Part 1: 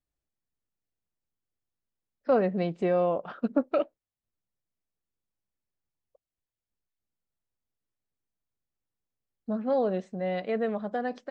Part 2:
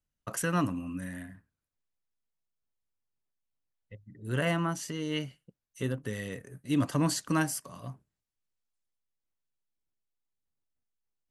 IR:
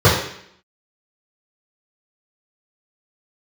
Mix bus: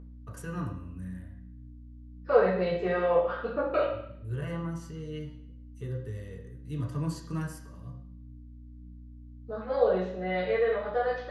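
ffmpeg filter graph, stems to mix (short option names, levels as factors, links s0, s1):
-filter_complex "[0:a]aeval=exprs='val(0)+0.00708*(sin(2*PI*60*n/s)+sin(2*PI*2*60*n/s)/2+sin(2*PI*3*60*n/s)/3+sin(2*PI*4*60*n/s)/4+sin(2*PI*5*60*n/s)/5)':c=same,bandpass=f=2700:t=q:w=0.7:csg=0,flanger=delay=7.8:depth=7.9:regen=-71:speed=0.45:shape=triangular,volume=0.668,asplit=2[s0][s1];[s1]volume=0.335[s2];[1:a]volume=0.158,asplit=2[s3][s4];[s4]volume=0.0708[s5];[2:a]atrim=start_sample=2205[s6];[s2][s5]amix=inputs=2:normalize=0[s7];[s7][s6]afir=irnorm=-1:irlink=0[s8];[s0][s3][s8]amix=inputs=3:normalize=0,aeval=exprs='val(0)+0.00631*(sin(2*PI*60*n/s)+sin(2*PI*2*60*n/s)/2+sin(2*PI*3*60*n/s)/3+sin(2*PI*4*60*n/s)/4+sin(2*PI*5*60*n/s)/5)':c=same"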